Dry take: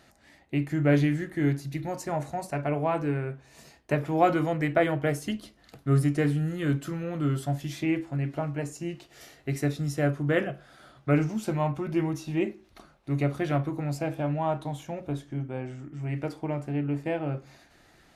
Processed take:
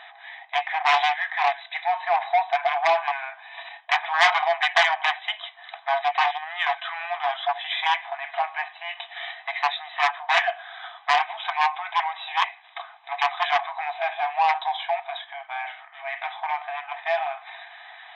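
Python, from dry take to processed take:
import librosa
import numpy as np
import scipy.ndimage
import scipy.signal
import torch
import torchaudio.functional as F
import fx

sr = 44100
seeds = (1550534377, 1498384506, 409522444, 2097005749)

p1 = fx.dynamic_eq(x, sr, hz=1200.0, q=1.3, threshold_db=-41.0, ratio=4.0, max_db=-4)
p2 = fx.level_steps(p1, sr, step_db=13)
p3 = p1 + (p2 * librosa.db_to_amplitude(-2.0))
p4 = fx.fold_sine(p3, sr, drive_db=12, ceiling_db=-7.5)
p5 = fx.brickwall_bandpass(p4, sr, low_hz=660.0, high_hz=4000.0)
p6 = fx.notch_comb(p5, sr, f0_hz=1400.0)
y = fx.transformer_sat(p6, sr, knee_hz=2000.0)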